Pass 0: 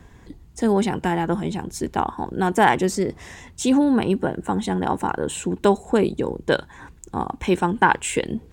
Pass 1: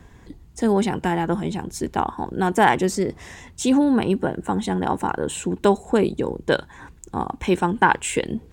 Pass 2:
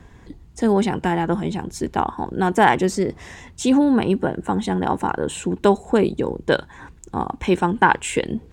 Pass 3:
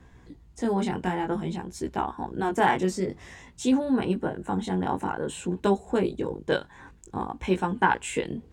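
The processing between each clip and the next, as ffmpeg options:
ffmpeg -i in.wav -af anull out.wav
ffmpeg -i in.wav -af "highshelf=frequency=9900:gain=-8.5,volume=1.5dB" out.wav
ffmpeg -i in.wav -af "flanger=delay=15.5:depth=6.6:speed=0.52,volume=-4dB" out.wav

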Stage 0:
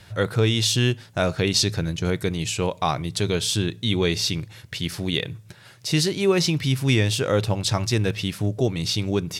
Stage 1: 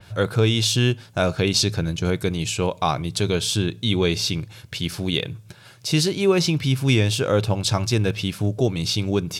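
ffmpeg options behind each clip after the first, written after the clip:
ffmpeg -i in.wav -af "bandreject=frequency=1900:width=8.2,adynamicequalizer=threshold=0.02:dfrequency=3300:dqfactor=0.7:tfrequency=3300:tqfactor=0.7:attack=5:release=100:ratio=0.375:range=1.5:mode=cutabove:tftype=highshelf,volume=1.5dB" out.wav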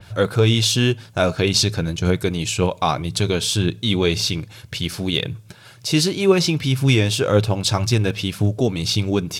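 ffmpeg -i in.wav -af "aphaser=in_gain=1:out_gain=1:delay=4.8:decay=0.3:speed=1.9:type=triangular,volume=2dB" out.wav

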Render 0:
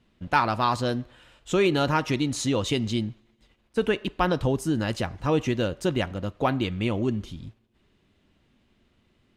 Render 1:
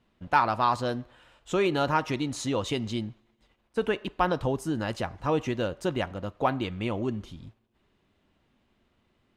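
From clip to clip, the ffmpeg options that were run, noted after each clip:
ffmpeg -i in.wav -af "equalizer=frequency=890:width=0.73:gain=6,volume=-5.5dB" out.wav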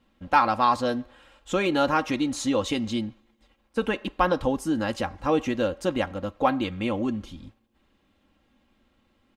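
ffmpeg -i in.wav -af "aecho=1:1:3.7:0.58,volume=2dB" out.wav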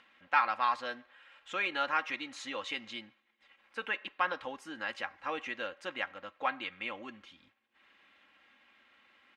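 ffmpeg -i in.wav -af "acompressor=mode=upward:threshold=-41dB:ratio=2.5,bandpass=frequency=2000:width_type=q:width=1.7:csg=0" out.wav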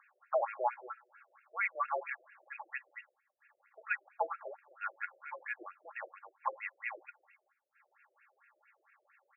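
ffmpeg -i in.wav -af "highpass=frequency=200:width_type=q:width=0.5412,highpass=frequency=200:width_type=q:width=1.307,lowpass=frequency=3200:width_type=q:width=0.5176,lowpass=frequency=3200:width_type=q:width=0.7071,lowpass=frequency=3200:width_type=q:width=1.932,afreqshift=-240,afftfilt=real='re*between(b*sr/1024,480*pow(2000/480,0.5+0.5*sin(2*PI*4.4*pts/sr))/1.41,480*pow(2000/480,0.5+0.5*sin(2*PI*4.4*pts/sr))*1.41)':imag='im*between(b*sr/1024,480*pow(2000/480,0.5+0.5*sin(2*PI*4.4*pts/sr))/1.41,480*pow(2000/480,0.5+0.5*sin(2*PI*4.4*pts/sr))*1.41)':win_size=1024:overlap=0.75,volume=1dB" out.wav

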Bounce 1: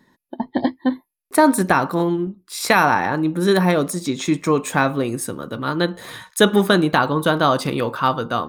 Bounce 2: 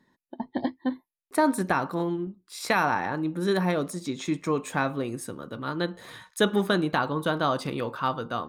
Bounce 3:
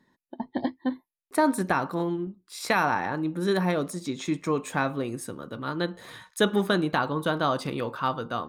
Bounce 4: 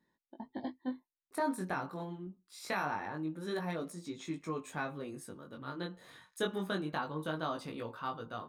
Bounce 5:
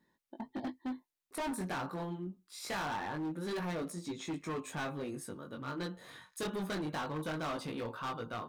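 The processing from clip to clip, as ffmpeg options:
ffmpeg -i in.wav -af "highshelf=frequency=10000:gain=-7,volume=-8.5dB" out.wav
ffmpeg -i in.wav -af anull out.wav
ffmpeg -i in.wav -af "flanger=delay=18:depth=4.1:speed=0.25,volume=-8.5dB" out.wav
ffmpeg -i in.wav -af "asoftclip=type=hard:threshold=-37.5dB,volume=3.5dB" out.wav

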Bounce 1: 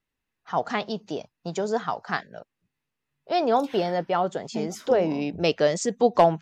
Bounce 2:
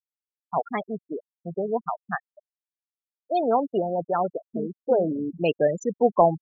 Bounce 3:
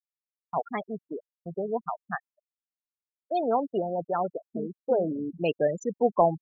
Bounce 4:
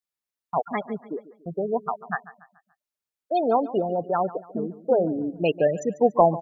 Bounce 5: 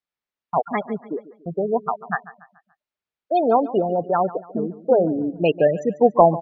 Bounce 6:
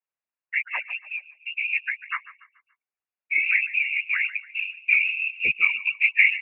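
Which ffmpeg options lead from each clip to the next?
ffmpeg -i in.wav -af "afftfilt=real='re*gte(hypot(re,im),0.126)':imag='im*gte(hypot(re,im),0.126)':win_size=1024:overlap=0.75" out.wav
ffmpeg -i in.wav -af "agate=range=-33dB:threshold=-38dB:ratio=3:detection=peak,volume=-3.5dB" out.wav
ffmpeg -i in.wav -af "aecho=1:1:143|286|429|572:0.141|0.0593|0.0249|0.0105,volume=4dB" out.wav
ffmpeg -i in.wav -af "lowpass=3500,volume=4dB" out.wav
ffmpeg -i in.wav -af "lowpass=frequency=2500:width_type=q:width=0.5098,lowpass=frequency=2500:width_type=q:width=0.6013,lowpass=frequency=2500:width_type=q:width=0.9,lowpass=frequency=2500:width_type=q:width=2.563,afreqshift=-2900,afftfilt=real='hypot(re,im)*cos(2*PI*random(0))':imag='hypot(re,im)*sin(2*PI*random(1))':win_size=512:overlap=0.75,volume=1.5dB" out.wav

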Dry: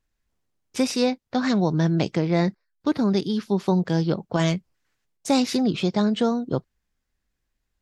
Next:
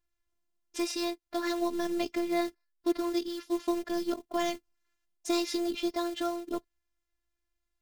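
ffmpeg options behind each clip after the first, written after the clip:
ffmpeg -i in.wav -af "equalizer=frequency=82:width=0.85:gain=-5,acrusher=bits=5:mode=log:mix=0:aa=0.000001,afftfilt=real='hypot(re,im)*cos(PI*b)':imag='0':win_size=512:overlap=0.75,volume=-3dB" out.wav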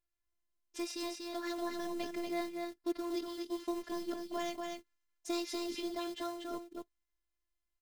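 ffmpeg -i in.wav -af "aecho=1:1:239:0.631,volume=-7.5dB" out.wav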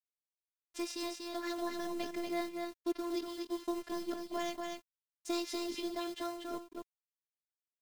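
ffmpeg -i in.wav -af "aeval=exprs='sgn(val(0))*max(abs(val(0))-0.00119,0)':channel_layout=same,volume=1dB" out.wav

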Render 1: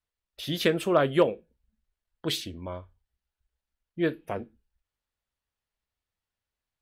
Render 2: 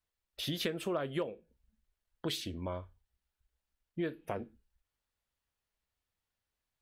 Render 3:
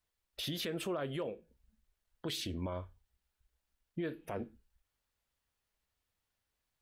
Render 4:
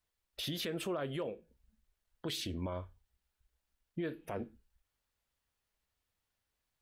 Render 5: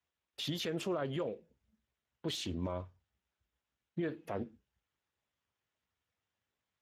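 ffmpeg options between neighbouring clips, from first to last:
ffmpeg -i in.wav -af "acompressor=threshold=-33dB:ratio=5" out.wav
ffmpeg -i in.wav -af "alimiter=level_in=8dB:limit=-24dB:level=0:latency=1:release=43,volume=-8dB,volume=2.5dB" out.wav
ffmpeg -i in.wav -af anull out.wav
ffmpeg -i in.wav -af "volume=1dB" -ar 32000 -c:a libspeex -b:a 15k out.spx

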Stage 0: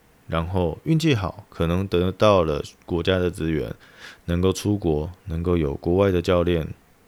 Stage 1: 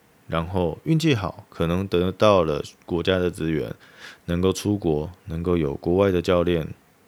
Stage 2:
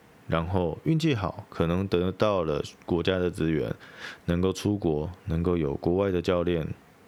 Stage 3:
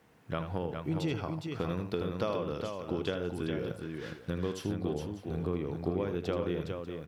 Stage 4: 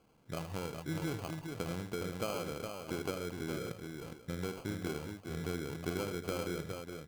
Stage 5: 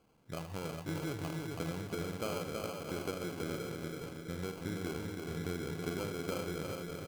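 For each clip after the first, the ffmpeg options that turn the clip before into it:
ffmpeg -i in.wav -af "highpass=95" out.wav
ffmpeg -i in.wav -af "highshelf=frequency=5500:gain=-8,acompressor=threshold=-24dB:ratio=5,volume=3dB" out.wav
ffmpeg -i in.wav -af "aecho=1:1:79|412|593:0.316|0.531|0.168,volume=-9dB" out.wav
ffmpeg -i in.wav -af "acrusher=samples=24:mix=1:aa=0.000001,volume=-5dB" out.wav
ffmpeg -i in.wav -af "aecho=1:1:326|652|978|1304|1630|1956:0.596|0.298|0.149|0.0745|0.0372|0.0186,volume=-1.5dB" out.wav

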